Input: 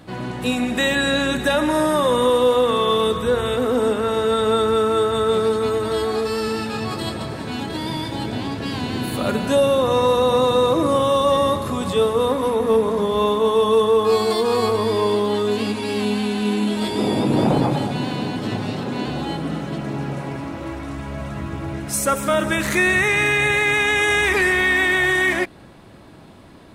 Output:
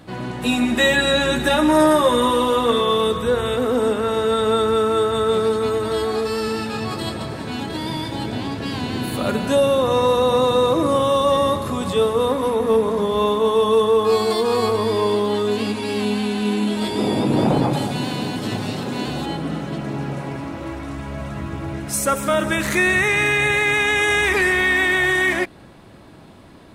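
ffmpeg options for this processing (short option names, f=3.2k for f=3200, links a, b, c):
-filter_complex "[0:a]asettb=1/sr,asplit=3[a][b][c];[a]atrim=end=0.424[d];[b]atrim=start=0.42:end=2.81,asetpts=PTS-STARTPTS,afade=t=in:d=0.004:c=qsin,afade=t=out:st=2.386:d=0.004:c=qsin,asplit=2[e][f];[f]adelay=13,volume=-2dB[g];[e][g]amix=inputs=2:normalize=0,atrim=end_sample=105399[h];[c]atrim=start=2.806[i];[d][h]acrossfade=d=0.004:c1=hsin:c2=qsin[j];[j][i]acrossfade=d=0.004:c1=qsin:c2=hsin,asettb=1/sr,asplit=3[k][l][m];[k]atrim=end=17.734[n];[l]atrim=start=17.73:end=19.26,asetpts=PTS-STARTPTS,afade=t=in:d=0.004:c=qsin,afade=t=out:st=1.526:d=0.004:c=qsin,aemphasis=mode=production:type=cd[o];[m]atrim=start=19.256[p];[n][o]acrossfade=d=0.004:c1=hsin:c2=qsin[q];[q][p]acrossfade=d=0.004:c1=qsin:c2=hsin"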